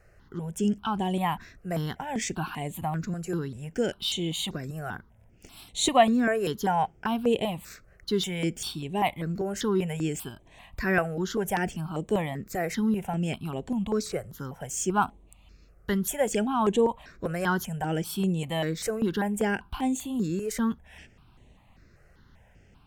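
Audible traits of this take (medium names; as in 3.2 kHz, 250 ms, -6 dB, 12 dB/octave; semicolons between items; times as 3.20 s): notches that jump at a steady rate 5.1 Hz 940–5000 Hz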